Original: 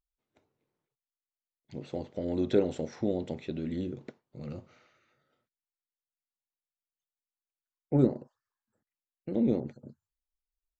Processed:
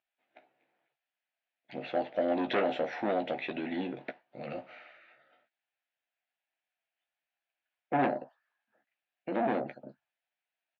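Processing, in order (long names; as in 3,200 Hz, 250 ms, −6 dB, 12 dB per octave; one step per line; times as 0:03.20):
soft clipping −27 dBFS, distortion −7 dB
loudspeaker in its box 410–3,400 Hz, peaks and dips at 420 Hz −10 dB, 700 Hz +9 dB, 1,100 Hz −8 dB, 1,700 Hz +6 dB, 2,500 Hz +5 dB
double-tracking delay 15 ms −7 dB
level +9 dB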